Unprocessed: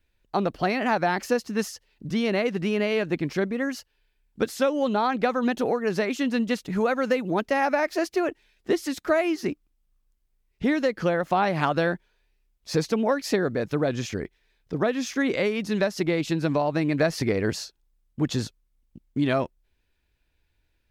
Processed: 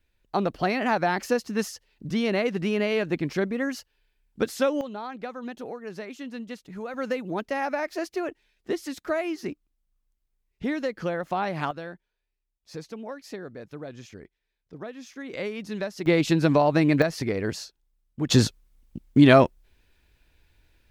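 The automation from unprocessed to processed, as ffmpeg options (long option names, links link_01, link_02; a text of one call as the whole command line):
ffmpeg -i in.wav -af "asetnsamples=nb_out_samples=441:pad=0,asendcmd='4.81 volume volume -12dB;6.94 volume volume -5dB;11.71 volume volume -14dB;15.33 volume volume -7dB;16.06 volume volume 4dB;17.02 volume volume -3dB;18.3 volume volume 9dB',volume=-0.5dB" out.wav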